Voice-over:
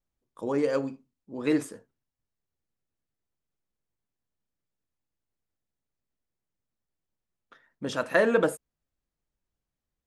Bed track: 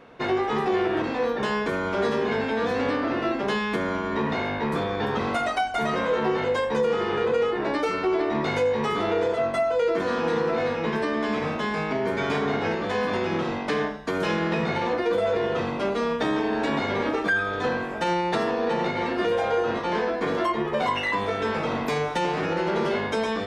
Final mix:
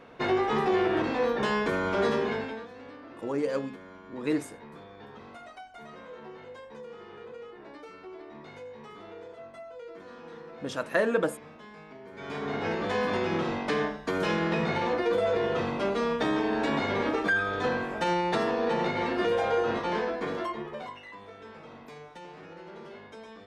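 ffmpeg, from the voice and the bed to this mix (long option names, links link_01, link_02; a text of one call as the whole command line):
ffmpeg -i stem1.wav -i stem2.wav -filter_complex "[0:a]adelay=2800,volume=-3dB[link_01];[1:a]volume=17dB,afade=type=out:start_time=2.11:duration=0.56:silence=0.105925,afade=type=in:start_time=12.12:duration=0.72:silence=0.11885,afade=type=out:start_time=19.75:duration=1.24:silence=0.125893[link_02];[link_01][link_02]amix=inputs=2:normalize=0" out.wav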